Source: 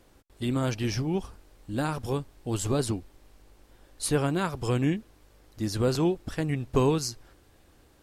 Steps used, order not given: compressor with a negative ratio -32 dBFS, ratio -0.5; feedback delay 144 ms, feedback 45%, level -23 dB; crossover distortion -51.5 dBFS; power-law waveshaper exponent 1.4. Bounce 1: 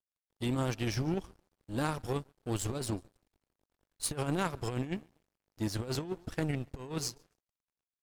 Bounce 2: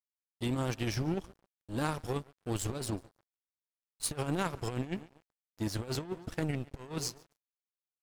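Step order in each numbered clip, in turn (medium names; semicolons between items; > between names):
feedback delay > crossover distortion > power-law waveshaper > compressor with a negative ratio; power-law waveshaper > feedback delay > compressor with a negative ratio > crossover distortion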